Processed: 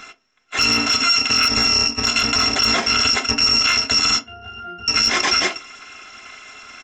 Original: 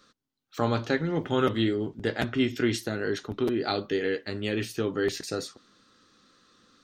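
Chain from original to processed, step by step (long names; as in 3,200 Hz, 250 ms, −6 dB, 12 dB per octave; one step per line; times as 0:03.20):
samples in bit-reversed order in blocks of 256 samples
downsampling to 16,000 Hz
gain into a clipping stage and back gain 22.5 dB
0:00.68–0:01.40: high-pass filter 87 Hz
0:04.19–0:04.88: resonances in every octave F, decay 0.49 s
convolution reverb RT60 0.25 s, pre-delay 3 ms, DRR 6 dB
downward compressor, threshold −28 dBFS, peak gain reduction 8 dB
boost into a limiter +29 dB
level −7 dB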